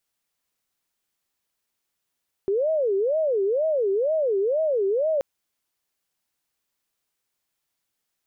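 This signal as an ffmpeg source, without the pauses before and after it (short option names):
-f lavfi -i "aevalsrc='0.106*sin(2*PI*(512.5*t-126.5/(2*PI*2.1)*sin(2*PI*2.1*t)))':d=2.73:s=44100"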